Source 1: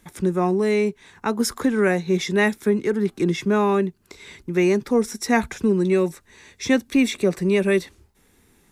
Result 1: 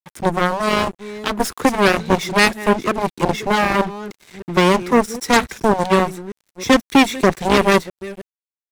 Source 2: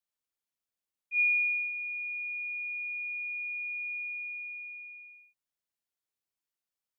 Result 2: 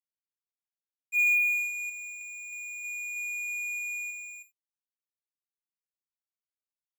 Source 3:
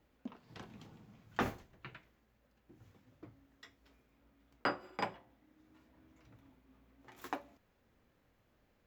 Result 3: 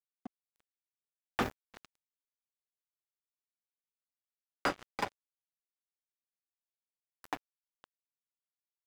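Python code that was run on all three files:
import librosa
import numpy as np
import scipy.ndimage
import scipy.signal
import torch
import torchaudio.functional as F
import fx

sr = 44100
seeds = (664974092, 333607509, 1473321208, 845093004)

y = fx.reverse_delay(x, sr, ms=316, wet_db=-14.0)
y = fx.cheby_harmonics(y, sr, harmonics=(3, 5, 7), levels_db=(-28, -39, -10), full_scale_db=-6.5)
y = np.sign(y) * np.maximum(np.abs(y) - 10.0 ** (-37.5 / 20.0), 0.0)
y = y * librosa.db_to_amplitude(5.0)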